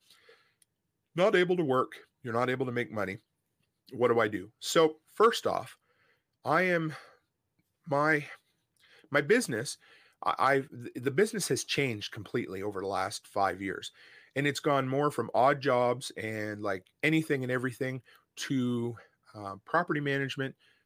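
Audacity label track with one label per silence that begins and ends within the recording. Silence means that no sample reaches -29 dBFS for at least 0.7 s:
3.130000	3.990000	silence
5.600000	6.460000	silence
6.880000	7.910000	silence
8.200000	9.130000	silence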